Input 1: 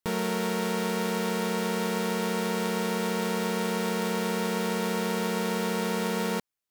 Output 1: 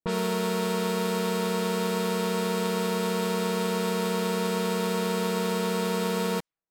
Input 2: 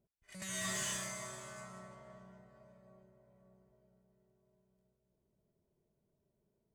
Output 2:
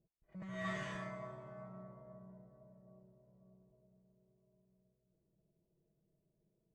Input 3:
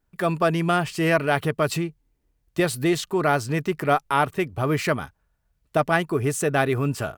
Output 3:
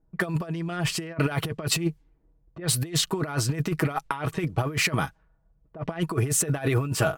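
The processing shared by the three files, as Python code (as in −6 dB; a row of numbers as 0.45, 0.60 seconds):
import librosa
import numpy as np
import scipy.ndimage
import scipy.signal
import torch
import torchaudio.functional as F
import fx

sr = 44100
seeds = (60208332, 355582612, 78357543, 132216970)

y = x + 0.52 * np.pad(x, (int(6.2 * sr / 1000.0), 0))[:len(x)]
y = fx.quant_float(y, sr, bits=6)
y = fx.over_compress(y, sr, threshold_db=-25.0, ratio=-0.5)
y = fx.env_lowpass(y, sr, base_hz=610.0, full_db=-24.0)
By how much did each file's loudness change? +1.0, −6.0, −3.5 LU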